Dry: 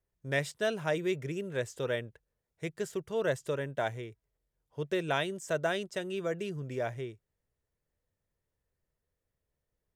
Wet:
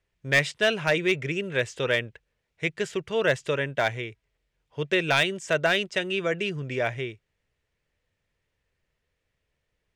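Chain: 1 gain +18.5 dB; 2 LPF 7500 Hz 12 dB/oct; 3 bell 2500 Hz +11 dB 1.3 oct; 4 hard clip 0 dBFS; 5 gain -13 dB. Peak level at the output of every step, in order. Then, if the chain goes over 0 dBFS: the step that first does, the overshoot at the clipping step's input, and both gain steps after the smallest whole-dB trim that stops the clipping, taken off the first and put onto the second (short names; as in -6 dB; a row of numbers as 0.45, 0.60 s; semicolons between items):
+2.5, +2.5, +8.0, 0.0, -13.0 dBFS; step 1, 8.0 dB; step 1 +10.5 dB, step 5 -5 dB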